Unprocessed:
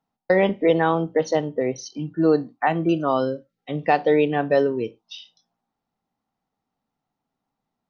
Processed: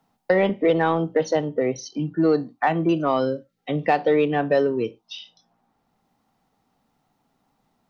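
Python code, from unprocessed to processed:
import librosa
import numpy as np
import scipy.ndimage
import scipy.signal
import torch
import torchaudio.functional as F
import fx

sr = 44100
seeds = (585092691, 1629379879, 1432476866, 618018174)

p1 = 10.0 ** (-17.0 / 20.0) * np.tanh(x / 10.0 ** (-17.0 / 20.0))
p2 = x + (p1 * 10.0 ** (-8.0 / 20.0))
p3 = fx.band_squash(p2, sr, depth_pct=40)
y = p3 * 10.0 ** (-2.5 / 20.0)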